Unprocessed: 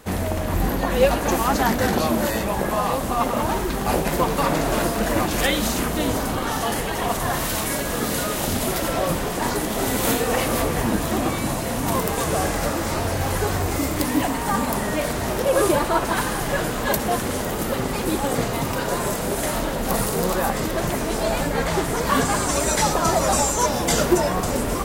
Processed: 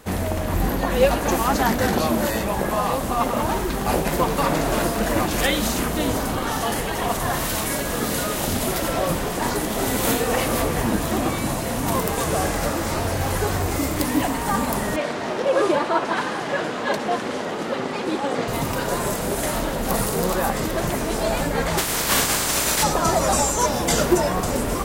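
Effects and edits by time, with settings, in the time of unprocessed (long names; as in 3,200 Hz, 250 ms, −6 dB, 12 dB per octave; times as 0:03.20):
0:14.96–0:18.48: band-pass filter 220–4,600 Hz
0:21.77–0:22.82: compressing power law on the bin magnitudes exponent 0.37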